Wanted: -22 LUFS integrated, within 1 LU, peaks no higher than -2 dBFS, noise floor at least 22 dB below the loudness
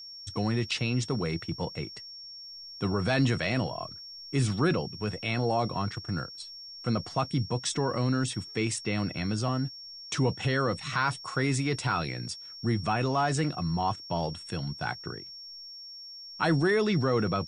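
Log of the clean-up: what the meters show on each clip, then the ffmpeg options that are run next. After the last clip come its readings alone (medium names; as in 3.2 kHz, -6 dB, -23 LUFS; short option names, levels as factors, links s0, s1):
steady tone 5.5 kHz; tone level -42 dBFS; loudness -29.5 LUFS; peak level -12.5 dBFS; loudness target -22.0 LUFS
-> -af "bandreject=f=5500:w=30"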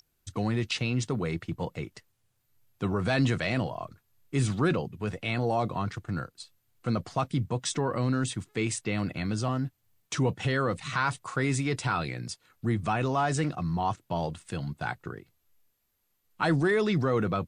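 steady tone not found; loudness -29.5 LUFS; peak level -12.5 dBFS; loudness target -22.0 LUFS
-> -af "volume=2.37"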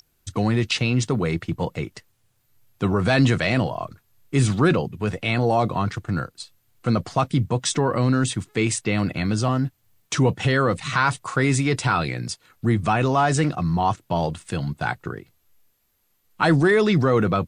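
loudness -22.5 LUFS; peak level -5.0 dBFS; noise floor -67 dBFS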